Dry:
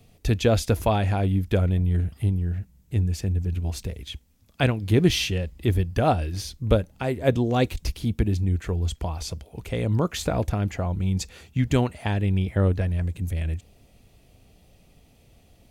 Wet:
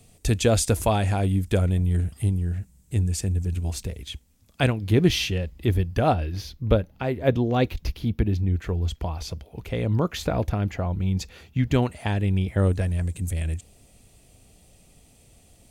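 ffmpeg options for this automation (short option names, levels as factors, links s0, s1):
-af "asetnsamples=n=441:p=0,asendcmd='3.73 equalizer g 5;4.73 equalizer g -3;6.14 equalizer g -14;8.55 equalizer g -7.5;11.82 equalizer g 3.5;12.58 equalizer g 13.5',equalizer=f=8400:t=o:w=0.81:g=13"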